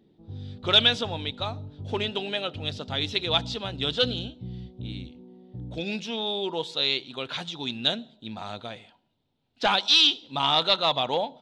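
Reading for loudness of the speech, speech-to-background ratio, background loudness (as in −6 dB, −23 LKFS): −25.0 LKFS, 15.0 dB, −40.0 LKFS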